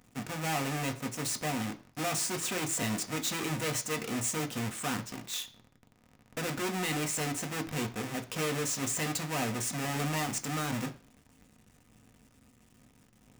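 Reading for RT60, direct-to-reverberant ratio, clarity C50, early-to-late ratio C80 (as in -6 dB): 0.40 s, 5.0 dB, 16.5 dB, 20.0 dB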